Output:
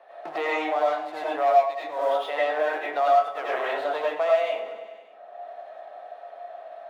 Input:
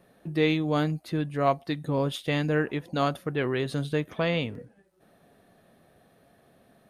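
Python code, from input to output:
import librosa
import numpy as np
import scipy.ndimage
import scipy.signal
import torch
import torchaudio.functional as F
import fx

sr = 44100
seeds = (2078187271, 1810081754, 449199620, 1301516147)

p1 = scipy.signal.sosfilt(scipy.signal.butter(2, 2900.0, 'lowpass', fs=sr, output='sos'), x)
p2 = fx.leveller(p1, sr, passes=2)
p3 = fx.rider(p2, sr, range_db=10, speed_s=0.5)
p4 = p2 + (p3 * librosa.db_to_amplitude(-0.5))
p5 = fx.ladder_highpass(p4, sr, hz=640.0, resonance_pct=65)
p6 = fx.echo_feedback(p5, sr, ms=97, feedback_pct=58, wet_db=-15.5)
p7 = fx.rev_freeverb(p6, sr, rt60_s=0.49, hf_ratio=0.4, predelay_ms=60, drr_db=-7.5)
p8 = fx.band_squash(p7, sr, depth_pct=70)
y = p8 * librosa.db_to_amplitude(-8.0)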